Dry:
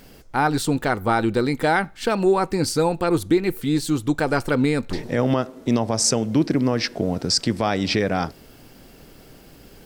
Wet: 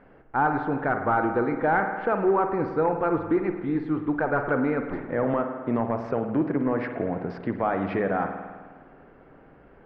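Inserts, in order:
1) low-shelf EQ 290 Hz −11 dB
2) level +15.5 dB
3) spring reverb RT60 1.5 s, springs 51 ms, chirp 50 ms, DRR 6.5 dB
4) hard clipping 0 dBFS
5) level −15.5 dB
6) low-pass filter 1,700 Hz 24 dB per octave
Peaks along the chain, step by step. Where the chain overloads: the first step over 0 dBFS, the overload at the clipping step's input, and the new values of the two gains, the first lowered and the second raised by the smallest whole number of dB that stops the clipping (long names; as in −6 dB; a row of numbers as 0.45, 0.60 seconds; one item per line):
−8.0, +7.5, +8.5, 0.0, −15.5, −14.0 dBFS
step 2, 8.5 dB
step 2 +6.5 dB, step 5 −6.5 dB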